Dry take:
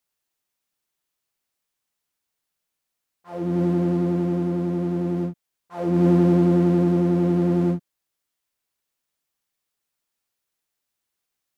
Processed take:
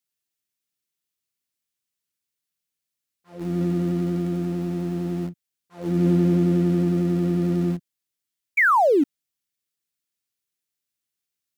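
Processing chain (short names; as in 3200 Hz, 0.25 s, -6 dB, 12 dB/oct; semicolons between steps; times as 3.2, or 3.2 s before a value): HPF 75 Hz 12 dB/oct; bell 830 Hz -11 dB 1.8 oct; painted sound fall, 8.57–9.04, 260–2400 Hz -17 dBFS; in parallel at -9 dB: sample gate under -25.5 dBFS; on the sum: gain -2.5 dB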